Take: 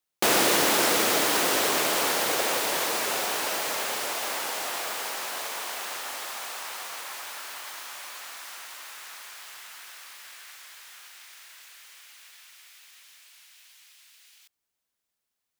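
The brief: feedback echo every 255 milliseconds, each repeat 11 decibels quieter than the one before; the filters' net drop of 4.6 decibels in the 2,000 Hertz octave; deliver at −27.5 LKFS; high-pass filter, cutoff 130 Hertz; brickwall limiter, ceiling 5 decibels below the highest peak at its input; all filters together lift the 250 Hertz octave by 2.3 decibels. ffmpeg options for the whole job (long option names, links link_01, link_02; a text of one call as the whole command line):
ffmpeg -i in.wav -af "highpass=130,equalizer=frequency=250:width_type=o:gain=3.5,equalizer=frequency=2000:width_type=o:gain=-6,alimiter=limit=-15dB:level=0:latency=1,aecho=1:1:255|510|765:0.282|0.0789|0.0221" out.wav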